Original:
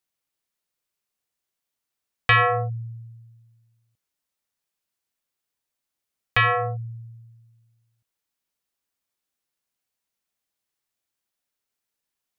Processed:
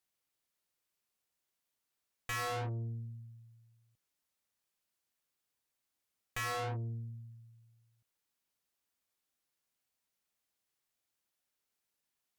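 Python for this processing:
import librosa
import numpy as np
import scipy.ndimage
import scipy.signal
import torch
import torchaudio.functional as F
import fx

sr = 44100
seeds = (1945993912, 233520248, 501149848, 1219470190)

y = fx.tube_stage(x, sr, drive_db=37.0, bias=0.6)
y = y * 10.0 ** (1.0 / 20.0)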